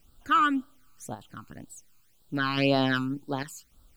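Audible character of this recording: random-step tremolo 3.5 Hz, depth 70%; a quantiser's noise floor 12-bit, dither triangular; phasing stages 12, 1.9 Hz, lowest notch 570–2200 Hz

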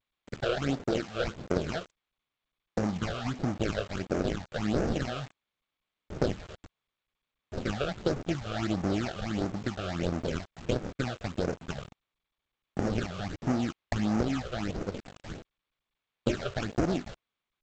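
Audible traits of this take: aliases and images of a low sample rate 1 kHz, jitter 20%; phasing stages 8, 1.5 Hz, lowest notch 250–3500 Hz; a quantiser's noise floor 8-bit, dither none; G.722

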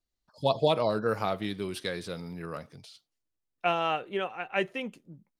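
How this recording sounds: noise floor -84 dBFS; spectral tilt -3.5 dB/octave

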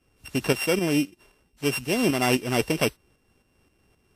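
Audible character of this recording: a buzz of ramps at a fixed pitch in blocks of 16 samples; tremolo saw up 3.8 Hz, depth 55%; WMA

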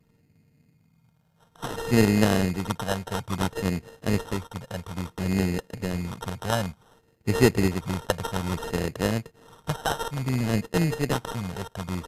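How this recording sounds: a buzz of ramps at a fixed pitch in blocks of 16 samples; phasing stages 4, 0.58 Hz, lowest notch 300–1400 Hz; aliases and images of a low sample rate 2.3 kHz, jitter 0%; MP2

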